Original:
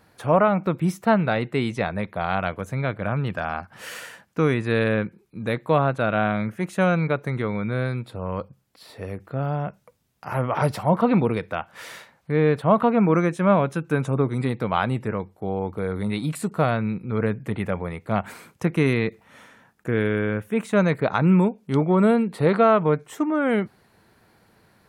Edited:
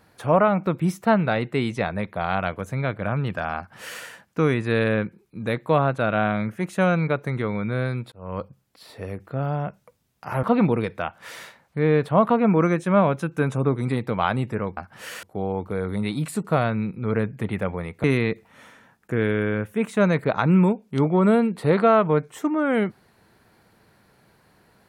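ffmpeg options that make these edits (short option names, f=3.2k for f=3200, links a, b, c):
-filter_complex "[0:a]asplit=6[a][b][c][d][e][f];[a]atrim=end=8.12,asetpts=PTS-STARTPTS,afade=t=out:st=8.116:d=0.004:c=hsin[g];[b]atrim=start=8.12:end=10.432,asetpts=PTS-STARTPTS,afade=t=in:d=0.28[h];[c]atrim=start=10.958:end=15.302[i];[d]atrim=start=3.568:end=4.032[j];[e]atrim=start=15.298:end=18.112[k];[f]atrim=start=18.798[l];[g][h]concat=n=2:v=0:a=1[m];[m][i]acrossfade=d=0.004:c1=hsin:c2=hsin[n];[n][j]acrossfade=d=0.004:c1=hsin:c2=hsin[o];[o][k]acrossfade=d=0.004:c1=hsin:c2=hsin[p];[p][l]acrossfade=d=0.004:c1=hsin:c2=hsin"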